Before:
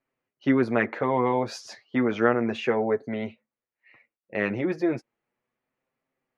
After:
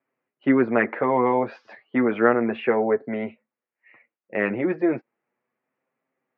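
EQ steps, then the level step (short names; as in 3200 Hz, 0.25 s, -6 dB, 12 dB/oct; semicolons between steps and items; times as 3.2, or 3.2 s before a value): HPF 170 Hz 12 dB/oct; LPF 2500 Hz 24 dB/oct; +3.5 dB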